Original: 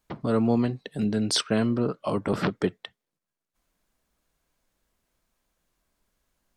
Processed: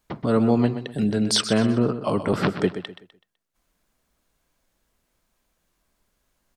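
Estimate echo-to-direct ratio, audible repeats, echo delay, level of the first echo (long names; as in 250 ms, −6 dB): −10.5 dB, 3, 126 ms, −11.0 dB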